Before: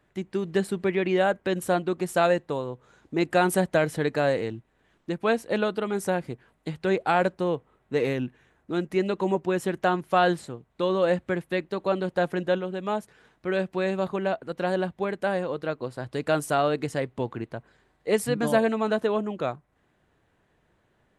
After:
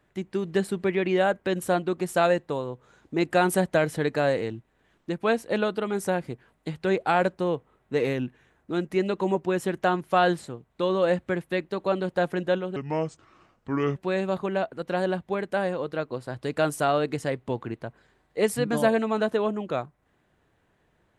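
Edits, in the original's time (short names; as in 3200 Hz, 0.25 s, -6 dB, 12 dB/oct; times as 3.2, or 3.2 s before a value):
12.76–13.66 speed 75%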